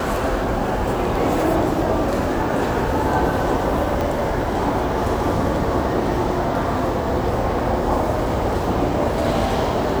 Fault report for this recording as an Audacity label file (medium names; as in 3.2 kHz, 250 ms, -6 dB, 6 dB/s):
4.010000	4.010000	pop